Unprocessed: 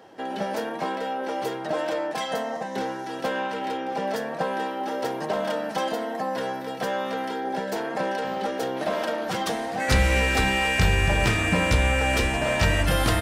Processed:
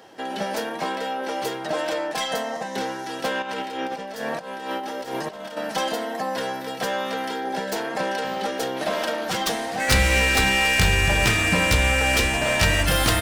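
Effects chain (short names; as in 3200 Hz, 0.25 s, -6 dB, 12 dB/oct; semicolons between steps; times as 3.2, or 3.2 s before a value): tracing distortion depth 0.052 ms; high shelf 2000 Hz +8 dB; 3.42–5.57 negative-ratio compressor -30 dBFS, ratio -0.5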